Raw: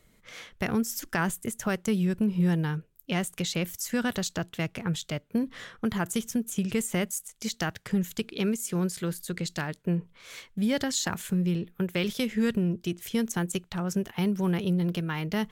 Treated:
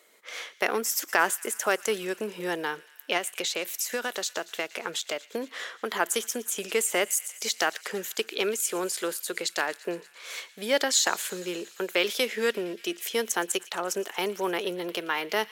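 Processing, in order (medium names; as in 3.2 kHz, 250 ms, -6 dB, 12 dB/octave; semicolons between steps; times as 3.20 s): high-pass 390 Hz 24 dB/octave; 3.17–5.92 s: compression, threshold -33 dBFS, peak gain reduction 7.5 dB; feedback echo behind a high-pass 116 ms, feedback 78%, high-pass 1.9 kHz, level -19 dB; trim +6.5 dB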